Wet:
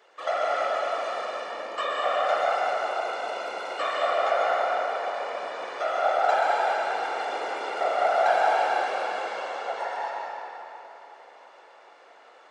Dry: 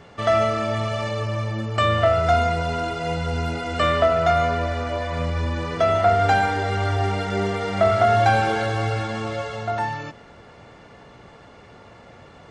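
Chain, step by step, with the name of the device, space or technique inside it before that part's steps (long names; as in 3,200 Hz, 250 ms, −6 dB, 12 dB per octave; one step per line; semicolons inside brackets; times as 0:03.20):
whispering ghost (random phases in short frames; high-pass filter 460 Hz 24 dB per octave; convolution reverb RT60 3.5 s, pre-delay 113 ms, DRR −3.5 dB)
level −9 dB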